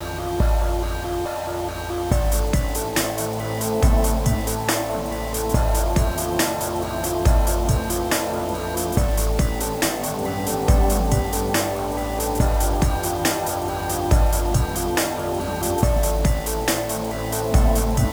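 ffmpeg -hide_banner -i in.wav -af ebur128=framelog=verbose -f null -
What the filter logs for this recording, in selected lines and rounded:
Integrated loudness:
  I:         -22.1 LUFS
  Threshold: -32.1 LUFS
Loudness range:
  LRA:         1.0 LU
  Threshold: -42.0 LUFS
  LRA low:   -22.6 LUFS
  LRA high:  -21.5 LUFS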